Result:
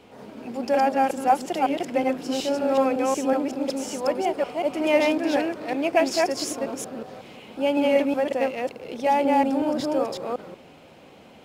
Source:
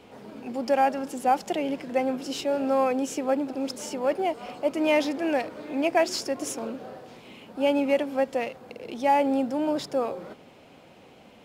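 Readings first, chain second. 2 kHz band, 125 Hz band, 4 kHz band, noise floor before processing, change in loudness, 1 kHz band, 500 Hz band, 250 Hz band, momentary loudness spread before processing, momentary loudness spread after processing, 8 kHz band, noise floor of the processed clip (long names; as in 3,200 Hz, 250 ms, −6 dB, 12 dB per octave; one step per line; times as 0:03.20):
+3.0 dB, +3.0 dB, +2.5 dB, −52 dBFS, +2.5 dB, +3.0 dB, +3.0 dB, +3.0 dB, 16 LU, 12 LU, +2.5 dB, −49 dBFS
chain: delay that plays each chunk backwards 185 ms, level −0.5 dB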